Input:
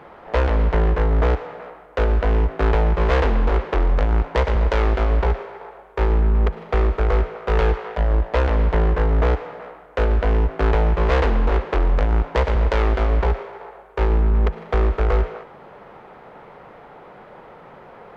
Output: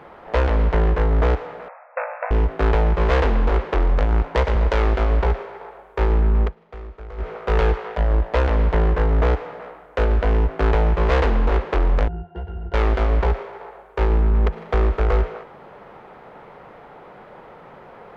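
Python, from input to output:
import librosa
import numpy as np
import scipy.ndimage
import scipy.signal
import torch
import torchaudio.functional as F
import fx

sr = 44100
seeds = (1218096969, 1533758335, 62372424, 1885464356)

y = fx.brickwall_bandpass(x, sr, low_hz=500.0, high_hz=2700.0, at=(1.68, 2.31))
y = fx.octave_resonator(y, sr, note='F', decay_s=0.15, at=(12.08, 12.74))
y = fx.edit(y, sr, fx.fade_down_up(start_s=6.42, length_s=0.87, db=-17.5, fade_s=0.12), tone=tone)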